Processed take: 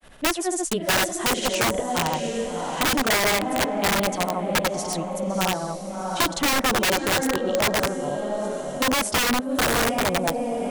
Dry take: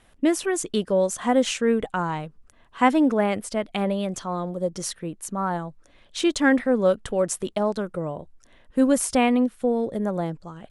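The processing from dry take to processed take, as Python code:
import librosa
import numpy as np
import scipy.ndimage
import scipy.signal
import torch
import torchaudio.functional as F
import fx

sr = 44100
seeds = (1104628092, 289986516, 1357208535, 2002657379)

p1 = fx.dynamic_eq(x, sr, hz=690.0, q=2.0, threshold_db=-37.0, ratio=4.0, max_db=8)
p2 = fx.granulator(p1, sr, seeds[0], grain_ms=143.0, per_s=14.0, spray_ms=100.0, spread_st=0)
p3 = p2 + fx.echo_diffused(p2, sr, ms=700, feedback_pct=40, wet_db=-7.0, dry=0)
p4 = (np.mod(10.0 ** (15.5 / 20.0) * p3 + 1.0, 2.0) - 1.0) / 10.0 ** (15.5 / 20.0)
y = fx.band_squash(p4, sr, depth_pct=40)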